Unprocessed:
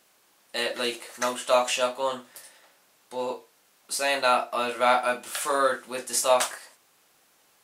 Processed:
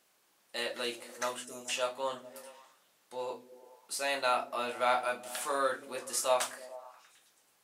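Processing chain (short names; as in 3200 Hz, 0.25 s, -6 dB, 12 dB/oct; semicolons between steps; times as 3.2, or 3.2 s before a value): notches 50/100/150/200/250 Hz; spectral gain 1.44–1.69, 490–4900 Hz -24 dB; delay with a stepping band-pass 0.107 s, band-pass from 150 Hz, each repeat 0.7 oct, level -8.5 dB; gain -7.5 dB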